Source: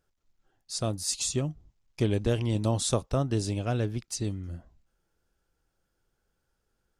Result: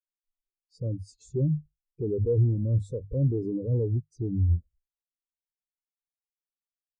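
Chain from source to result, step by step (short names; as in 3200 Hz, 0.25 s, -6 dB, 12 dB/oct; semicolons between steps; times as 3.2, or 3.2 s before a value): resonant low shelf 650 Hz +10.5 dB, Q 3; notches 50/100/150 Hz; in parallel at 0 dB: negative-ratio compressor -19 dBFS; on the sum: limiter -8.5 dBFS, peak gain reduction 8 dB; soft clip -15.5 dBFS, distortion -12 dB; spectral expander 2.5:1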